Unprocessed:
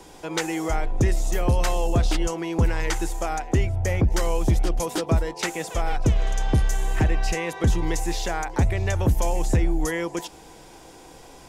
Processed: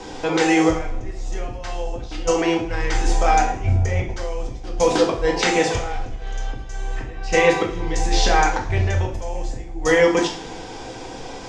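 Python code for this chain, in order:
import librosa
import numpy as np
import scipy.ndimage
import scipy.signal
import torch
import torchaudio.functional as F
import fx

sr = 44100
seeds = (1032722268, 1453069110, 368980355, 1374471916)

y = scipy.signal.sosfilt(scipy.signal.butter(4, 6400.0, 'lowpass', fs=sr, output='sos'), x)
y = fx.over_compress(y, sr, threshold_db=-26.0, ratio=-0.5)
y = fx.rev_double_slope(y, sr, seeds[0], early_s=0.45, late_s=1.7, knee_db=-21, drr_db=-0.5)
y = y * 10.0 ** (3.5 / 20.0)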